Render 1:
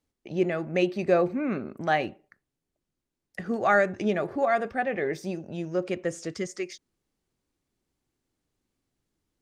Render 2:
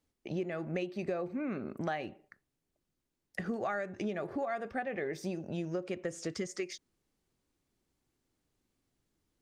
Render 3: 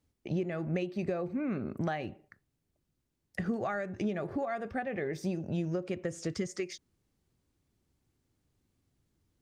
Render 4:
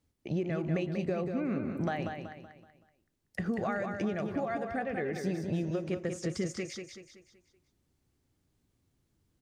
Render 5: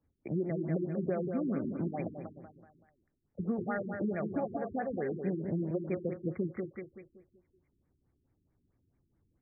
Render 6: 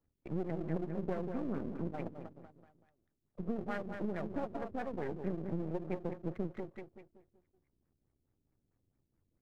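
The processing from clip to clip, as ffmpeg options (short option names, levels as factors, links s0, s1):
-af "acompressor=threshold=0.0251:ratio=10"
-af "equalizer=f=90:w=0.62:g=10"
-af "aecho=1:1:189|378|567|756|945:0.501|0.21|0.0884|0.0371|0.0156"
-filter_complex "[0:a]acrossover=split=120[s0][s1];[s0]acompressor=threshold=0.00141:ratio=6[s2];[s2][s1]amix=inputs=2:normalize=0,afftfilt=real='re*lt(b*sr/1024,390*pow(2500/390,0.5+0.5*sin(2*PI*4.6*pts/sr)))':imag='im*lt(b*sr/1024,390*pow(2500/390,0.5+0.5*sin(2*PI*4.6*pts/sr)))':win_size=1024:overlap=0.75"
-af "aeval=exprs='if(lt(val(0),0),0.251*val(0),val(0))':c=same,volume=0.841"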